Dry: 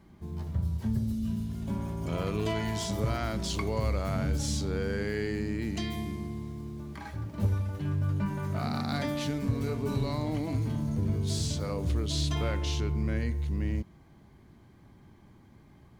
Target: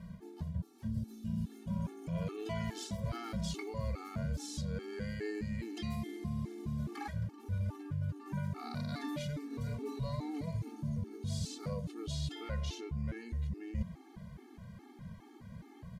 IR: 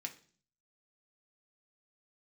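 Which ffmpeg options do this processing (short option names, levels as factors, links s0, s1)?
-af "equalizer=f=170:w=4.9:g=8.5,areverse,acompressor=threshold=0.0126:ratio=20,areverse,aresample=32000,aresample=44100,afftfilt=real='re*gt(sin(2*PI*2.4*pts/sr)*(1-2*mod(floor(b*sr/1024/230),2)),0)':imag='im*gt(sin(2*PI*2.4*pts/sr)*(1-2*mod(floor(b*sr/1024/230),2)),0)':win_size=1024:overlap=0.75,volume=2.11"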